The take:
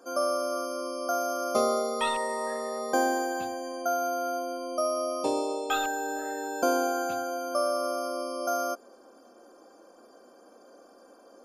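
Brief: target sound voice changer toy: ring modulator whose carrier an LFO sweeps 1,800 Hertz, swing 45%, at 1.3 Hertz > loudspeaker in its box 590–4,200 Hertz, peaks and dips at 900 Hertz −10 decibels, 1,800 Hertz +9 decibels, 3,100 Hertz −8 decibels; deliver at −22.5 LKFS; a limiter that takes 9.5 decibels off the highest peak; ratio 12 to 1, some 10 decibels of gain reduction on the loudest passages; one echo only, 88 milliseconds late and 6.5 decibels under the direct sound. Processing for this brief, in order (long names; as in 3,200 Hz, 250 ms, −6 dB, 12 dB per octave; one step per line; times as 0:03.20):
downward compressor 12 to 1, threshold −30 dBFS
brickwall limiter −27.5 dBFS
single-tap delay 88 ms −6.5 dB
ring modulator whose carrier an LFO sweeps 1,800 Hz, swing 45%, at 1.3 Hz
loudspeaker in its box 590–4,200 Hz, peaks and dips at 900 Hz −10 dB, 1,800 Hz +9 dB, 3,100 Hz −8 dB
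level +12 dB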